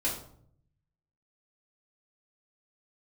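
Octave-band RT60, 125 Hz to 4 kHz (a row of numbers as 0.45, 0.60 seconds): 1.2, 0.80, 0.70, 0.55, 0.40, 0.40 seconds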